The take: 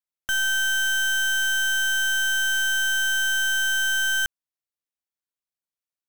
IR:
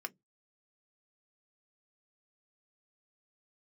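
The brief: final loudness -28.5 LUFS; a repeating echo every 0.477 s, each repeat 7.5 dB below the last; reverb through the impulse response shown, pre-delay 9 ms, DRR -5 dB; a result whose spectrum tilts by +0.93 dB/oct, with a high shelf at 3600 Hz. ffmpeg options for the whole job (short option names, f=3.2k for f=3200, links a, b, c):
-filter_complex "[0:a]highshelf=f=3.6k:g=-3,aecho=1:1:477|954|1431|1908|2385:0.422|0.177|0.0744|0.0312|0.0131,asplit=2[a][b];[1:a]atrim=start_sample=2205,adelay=9[c];[b][c]afir=irnorm=-1:irlink=0,volume=5.5dB[d];[a][d]amix=inputs=2:normalize=0,volume=-13dB"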